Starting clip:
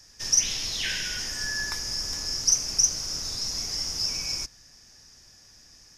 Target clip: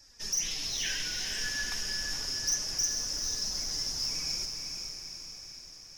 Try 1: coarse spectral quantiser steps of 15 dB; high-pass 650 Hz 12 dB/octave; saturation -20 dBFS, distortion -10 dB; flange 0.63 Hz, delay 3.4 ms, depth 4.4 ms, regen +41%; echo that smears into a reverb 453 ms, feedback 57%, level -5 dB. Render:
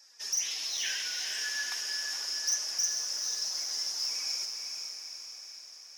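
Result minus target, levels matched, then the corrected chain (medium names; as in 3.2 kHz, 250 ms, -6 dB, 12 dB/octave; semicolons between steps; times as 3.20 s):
500 Hz band -5.5 dB
coarse spectral quantiser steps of 15 dB; saturation -20 dBFS, distortion -11 dB; flange 0.63 Hz, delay 3.4 ms, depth 4.4 ms, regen +41%; echo that smears into a reverb 453 ms, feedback 57%, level -5 dB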